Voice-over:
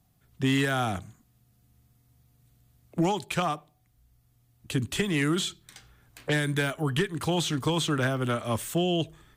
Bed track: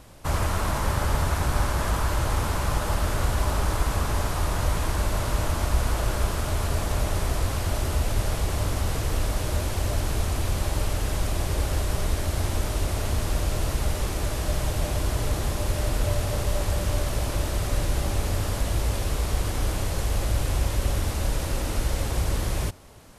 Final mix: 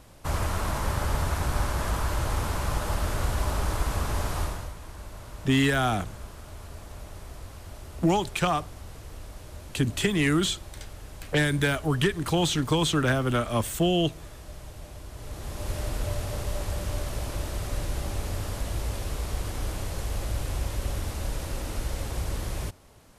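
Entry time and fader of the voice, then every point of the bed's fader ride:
5.05 s, +2.5 dB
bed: 0:04.42 −3 dB
0:04.75 −16.5 dB
0:15.10 −16.5 dB
0:15.71 −5.5 dB

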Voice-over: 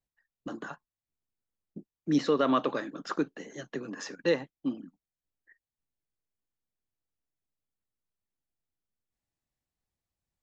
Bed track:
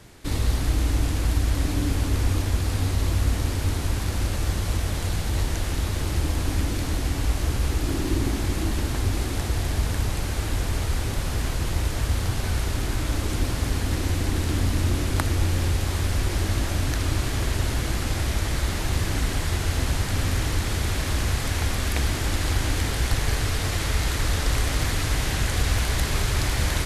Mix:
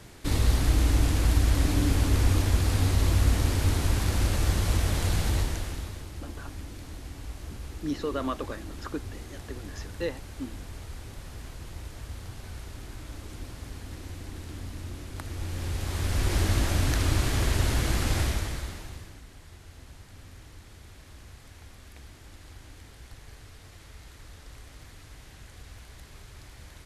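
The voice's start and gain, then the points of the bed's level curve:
5.75 s, −5.5 dB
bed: 0:05.28 0 dB
0:06.11 −15.5 dB
0:15.12 −15.5 dB
0:16.35 −0.5 dB
0:18.21 −0.5 dB
0:19.23 −24 dB

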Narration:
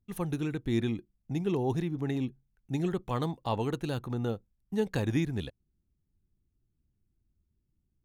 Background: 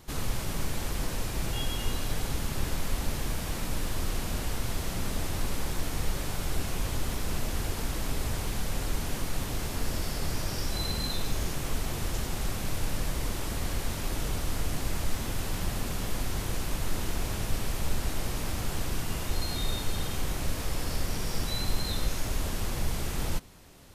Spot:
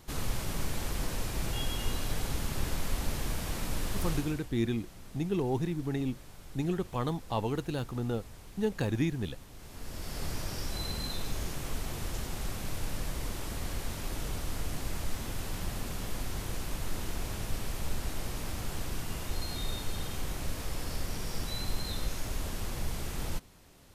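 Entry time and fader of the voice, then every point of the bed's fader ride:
3.85 s, −1.0 dB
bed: 0:04.13 −2 dB
0:04.51 −18 dB
0:09.53 −18 dB
0:10.20 −4.5 dB

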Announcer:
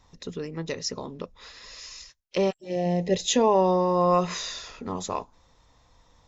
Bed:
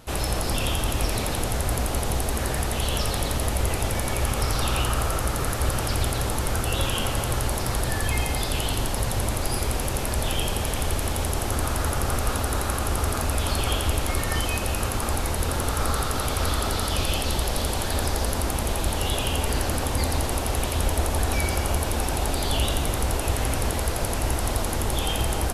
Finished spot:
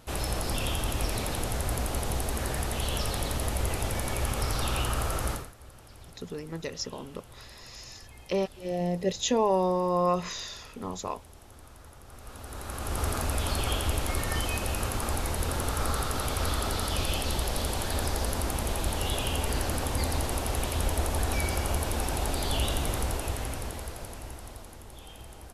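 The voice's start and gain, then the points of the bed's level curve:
5.95 s, −4.0 dB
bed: 0:05.33 −5 dB
0:05.53 −25.5 dB
0:12.04 −25.5 dB
0:13.03 −4.5 dB
0:22.97 −4.5 dB
0:24.83 −21.5 dB

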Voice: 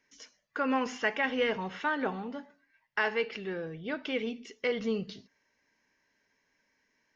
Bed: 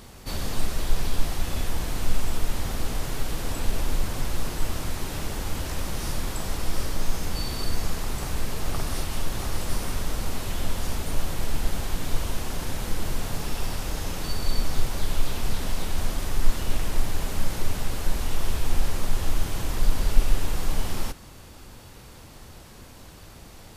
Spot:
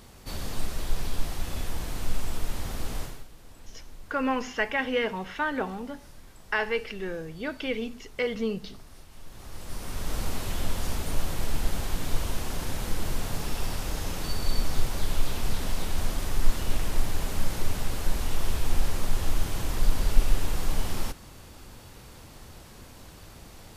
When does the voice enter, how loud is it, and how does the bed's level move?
3.55 s, +2.0 dB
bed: 0:03.02 −4.5 dB
0:03.29 −21 dB
0:09.10 −21 dB
0:10.16 −1.5 dB

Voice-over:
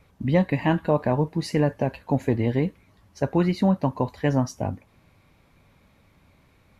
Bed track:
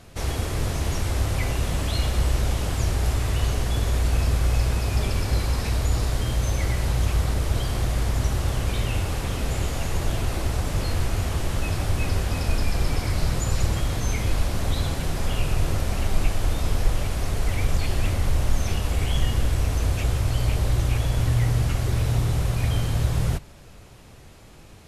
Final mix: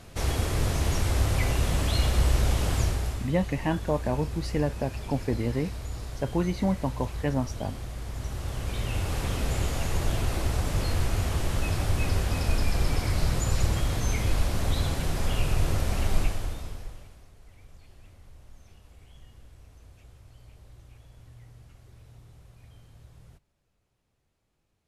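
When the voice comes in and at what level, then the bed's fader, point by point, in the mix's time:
3.00 s, −5.5 dB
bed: 0:02.79 −0.5 dB
0:03.32 −13 dB
0:08.00 −13 dB
0:09.21 −2 dB
0:16.18 −2 dB
0:17.32 −29 dB

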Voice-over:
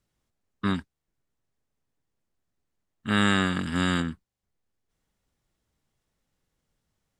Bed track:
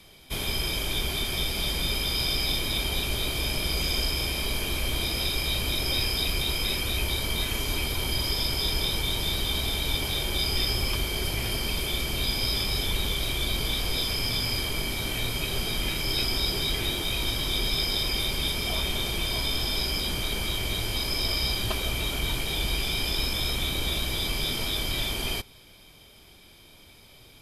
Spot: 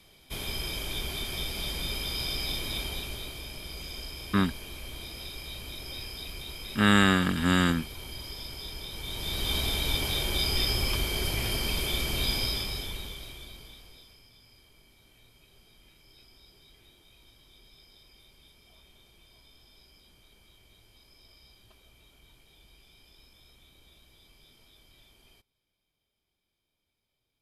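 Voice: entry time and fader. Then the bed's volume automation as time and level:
3.70 s, +1.5 dB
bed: 0:02.79 −5.5 dB
0:03.47 −13 dB
0:08.89 −13 dB
0:09.52 −1 dB
0:12.35 −1 dB
0:14.30 −30.5 dB

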